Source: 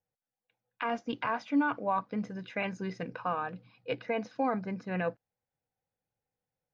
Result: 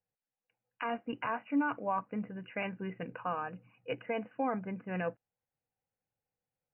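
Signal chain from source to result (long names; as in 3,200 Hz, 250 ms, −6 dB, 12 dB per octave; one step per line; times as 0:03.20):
linear-phase brick-wall low-pass 3,000 Hz
level −3 dB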